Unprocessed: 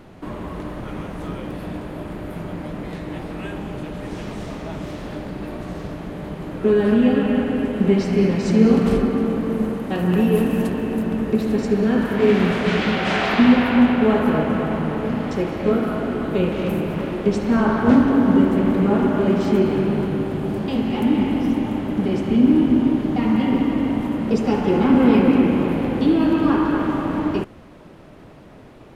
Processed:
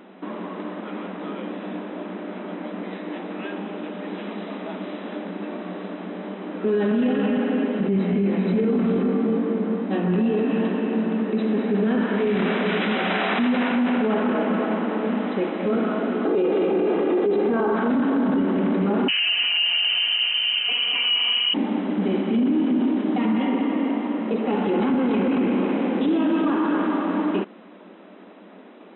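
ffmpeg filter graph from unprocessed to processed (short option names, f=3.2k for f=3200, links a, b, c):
-filter_complex "[0:a]asettb=1/sr,asplit=3[a][b][c];[a]atrim=end=7.874[d];[b]atrim=start=7.87:end=10.5,asetpts=PTS-STARTPTS,afade=t=in:d=0.004:c=qsin,afade=t=out:st=2.626:d=0.004:c=qsin,lowshelf=f=340:g=6.5,bandreject=f=2.9k:w=27,flanger=delay=19.5:depth=2.7:speed=2.4[e];[c]atrim=start=10.496[f];[d][e]acrossfade=d=0.004:c1=hsin:c2=qsin[g];[g][f]acrossfade=d=0.004:c1=qsin:c2=hsin,asettb=1/sr,asplit=3[h][i][j];[h]atrim=end=16.254[k];[i]atrim=start=16.25:end=17.75,asetpts=PTS-STARTPTS,afade=t=in:d=0.004:c=qsin,afade=t=out:st=1.496:d=0.004:c=qsin,acompressor=threshold=-21dB:ratio=2:attack=3.2:release=140:knee=1:detection=peak,equalizer=f=430:w=0.52:g=10.5,aecho=1:1:2.5:0.56,atrim=end_sample=66150[l];[j]atrim=start=17.746[m];[k][l]acrossfade=d=0.004:c1=hsin:c2=qsin[n];[n][m]acrossfade=d=0.004:c1=qsin:c2=hsin,asettb=1/sr,asplit=3[o][p][q];[o]atrim=end=19.084[r];[p]atrim=start=19.08:end=21.54,asetpts=PTS-STARTPTS,afade=t=in:d=0.004:c=qsin,afade=t=out:st=2.456:d=0.004:c=qsin,lowpass=f=2.7k:t=q:w=0.5098,lowpass=f=2.7k:t=q:w=0.6013,lowpass=f=2.7k:t=q:w=0.9,lowpass=f=2.7k:t=q:w=2.563,afreqshift=-3200,aecho=1:1:4.2:0.77,atrim=end_sample=108486[s];[q]atrim=start=21.536[t];[r][s]acrossfade=d=0.004:c1=hsin:c2=qsin[u];[u][t]acrossfade=d=0.004:c1=qsin:c2=hsin,asettb=1/sr,asplit=3[v][w][x];[v]atrim=end=23.384[y];[w]atrim=start=23.38:end=24.53,asetpts=PTS-STARTPTS,afade=t=in:d=0.004:c=qsin,afade=t=out:st=1.146:d=0.004:c=qsin,highpass=240,lowpass=3.5k,bandreject=f=1.5k:w=22[z];[x]atrim=start=24.526[aa];[y][z]acrossfade=d=0.004:c1=hsin:c2=qsin[ab];[ab][aa]acrossfade=d=0.004:c1=qsin:c2=hsin,afftfilt=real='re*between(b*sr/4096,180,4000)':imag='im*between(b*sr/4096,180,4000)':win_size=4096:overlap=0.75,alimiter=limit=-14.5dB:level=0:latency=1:release=13"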